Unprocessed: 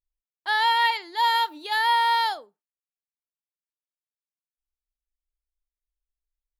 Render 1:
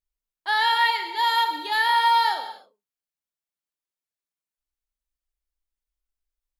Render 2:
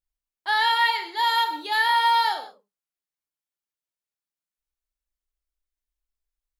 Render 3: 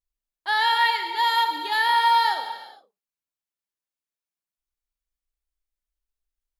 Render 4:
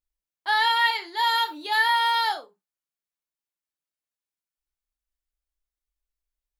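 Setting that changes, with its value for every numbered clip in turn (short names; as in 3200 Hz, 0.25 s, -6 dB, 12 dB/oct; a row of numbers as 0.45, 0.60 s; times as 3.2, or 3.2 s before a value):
non-linear reverb, gate: 0.33, 0.21, 0.49, 0.1 s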